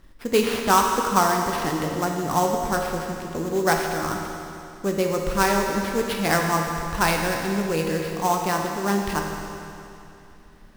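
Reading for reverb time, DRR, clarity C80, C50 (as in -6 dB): 2.8 s, 1.0 dB, 3.5 dB, 2.5 dB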